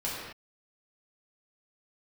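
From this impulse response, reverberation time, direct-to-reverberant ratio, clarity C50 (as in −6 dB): non-exponential decay, −7.5 dB, −1.0 dB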